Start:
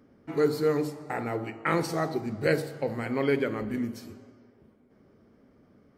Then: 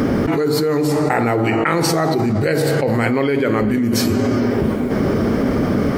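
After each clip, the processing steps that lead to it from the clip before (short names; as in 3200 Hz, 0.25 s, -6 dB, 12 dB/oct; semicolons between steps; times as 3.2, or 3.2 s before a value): fast leveller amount 100%; gain +2.5 dB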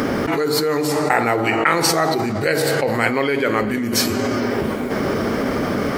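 low shelf 410 Hz -11.5 dB; in parallel at -10.5 dB: crossover distortion -37.5 dBFS; on the sum: gain +1.5 dB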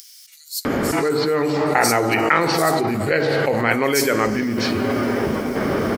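bands offset in time highs, lows 0.65 s, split 4700 Hz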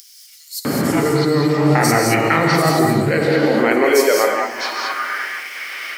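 non-linear reverb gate 0.24 s rising, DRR 1 dB; high-pass sweep 140 Hz -> 2300 Hz, 3.03–5.52; gain -1 dB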